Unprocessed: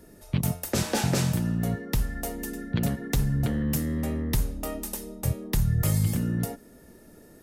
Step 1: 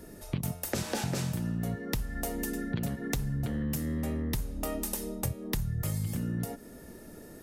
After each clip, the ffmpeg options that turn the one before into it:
ffmpeg -i in.wav -af "acompressor=threshold=-33dB:ratio=6,volume=3.5dB" out.wav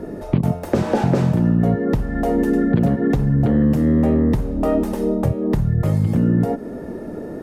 ffmpeg -i in.wav -filter_complex "[0:a]asplit=2[link_01][link_02];[link_02]highpass=frequency=720:poles=1,volume=20dB,asoftclip=type=tanh:threshold=-13dB[link_03];[link_01][link_03]amix=inputs=2:normalize=0,lowpass=frequency=1500:poles=1,volume=-6dB,tiltshelf=frequency=920:gain=10,volume=5dB" out.wav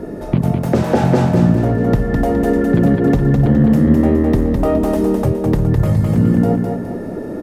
ffmpeg -i in.wav -filter_complex "[0:a]asplit=2[link_01][link_02];[link_02]asoftclip=type=hard:threshold=-15dB,volume=-11.5dB[link_03];[link_01][link_03]amix=inputs=2:normalize=0,aecho=1:1:208|416|624|832|1040:0.631|0.271|0.117|0.0502|0.0216,volume=1dB" out.wav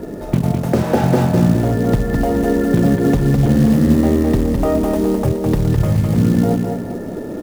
ffmpeg -i in.wav -af "acrusher=bits=6:mode=log:mix=0:aa=0.000001,volume=-1dB" out.wav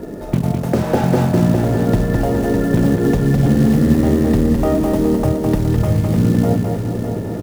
ffmpeg -i in.wav -af "aecho=1:1:605|1210|1815|2420|3025|3630:0.398|0.207|0.108|0.056|0.0291|0.0151,volume=-1dB" out.wav

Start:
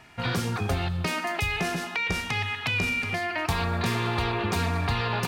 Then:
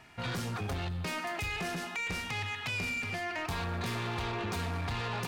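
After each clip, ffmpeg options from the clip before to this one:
ffmpeg -i in.wav -af "asoftclip=type=tanh:threshold=-26.5dB,volume=-4dB" out.wav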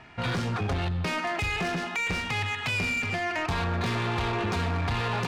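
ffmpeg -i in.wav -af "adynamicsmooth=sensitivity=7:basefreq=4300,volume=7dB" out.wav

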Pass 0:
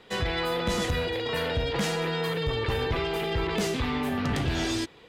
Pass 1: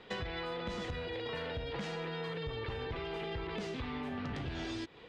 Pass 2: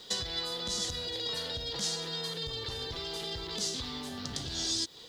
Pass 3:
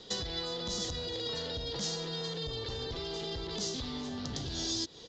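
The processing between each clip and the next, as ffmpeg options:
ffmpeg -i in.wav -af "lowpass=4400,acompressor=threshold=-35dB:ratio=12,volume=-1dB" out.wav
ffmpeg -i in.wav -af "aexciter=amount=9.3:drive=9:freq=3800,volume=-2dB" out.wav
ffmpeg -i in.wav -filter_complex "[0:a]acrossover=split=650[link_01][link_02];[link_01]aeval=exprs='0.0237*sin(PI/2*1.58*val(0)/0.0237)':channel_layout=same[link_03];[link_02]aecho=1:1:380:0.075[link_04];[link_03][link_04]amix=inputs=2:normalize=0,aresample=16000,aresample=44100,volume=-3dB" out.wav

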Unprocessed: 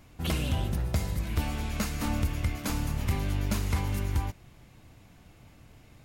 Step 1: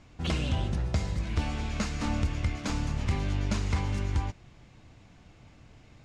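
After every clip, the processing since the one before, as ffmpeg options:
ffmpeg -i in.wav -af "lowpass=frequency=7200:width=0.5412,lowpass=frequency=7200:width=1.3066" out.wav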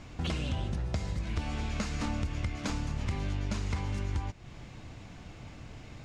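ffmpeg -i in.wav -af "acompressor=threshold=-41dB:ratio=3,volume=7.5dB" out.wav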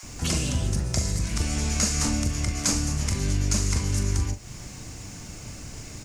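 ffmpeg -i in.wav -filter_complex "[0:a]aexciter=amount=7.4:drive=4.5:freq=5100,asplit=2[link_01][link_02];[link_02]adelay=41,volume=-9dB[link_03];[link_01][link_03]amix=inputs=2:normalize=0,acrossover=split=810[link_04][link_05];[link_04]adelay=30[link_06];[link_06][link_05]amix=inputs=2:normalize=0,volume=6dB" out.wav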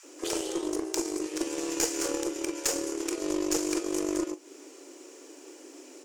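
ffmpeg -i in.wav -af "afreqshift=260,aeval=exprs='0.398*(cos(1*acos(clip(val(0)/0.398,-1,1)))-cos(1*PI/2))+0.0501*(cos(3*acos(clip(val(0)/0.398,-1,1)))-cos(3*PI/2))+0.0562*(cos(4*acos(clip(val(0)/0.398,-1,1)))-cos(4*PI/2))+0.0251*(cos(6*acos(clip(val(0)/0.398,-1,1)))-cos(6*PI/2))+0.0158*(cos(7*acos(clip(val(0)/0.398,-1,1)))-cos(7*PI/2))':channel_layout=same" -ar 44100 -c:a libmp3lame -b:a 112k out.mp3

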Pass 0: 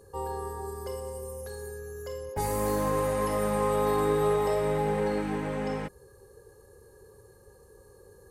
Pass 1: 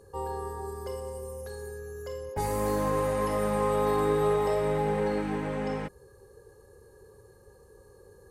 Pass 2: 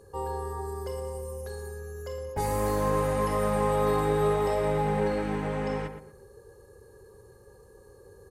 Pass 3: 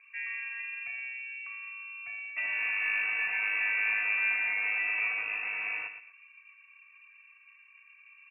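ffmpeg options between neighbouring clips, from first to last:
ffmpeg -i in.wav -af "highshelf=frequency=7800:gain=-5.5" out.wav
ffmpeg -i in.wav -filter_complex "[0:a]asplit=2[link_01][link_02];[link_02]adelay=117,lowpass=frequency=1900:poles=1,volume=-8dB,asplit=2[link_03][link_04];[link_04]adelay=117,lowpass=frequency=1900:poles=1,volume=0.31,asplit=2[link_05][link_06];[link_06]adelay=117,lowpass=frequency=1900:poles=1,volume=0.31,asplit=2[link_07][link_08];[link_08]adelay=117,lowpass=frequency=1900:poles=1,volume=0.31[link_09];[link_01][link_03][link_05][link_07][link_09]amix=inputs=5:normalize=0,volume=1dB" out.wav
ffmpeg -i in.wav -af "lowpass=frequency=2400:width_type=q:width=0.5098,lowpass=frequency=2400:width_type=q:width=0.6013,lowpass=frequency=2400:width_type=q:width=0.9,lowpass=frequency=2400:width_type=q:width=2.563,afreqshift=-2800,volume=-4.5dB" out.wav

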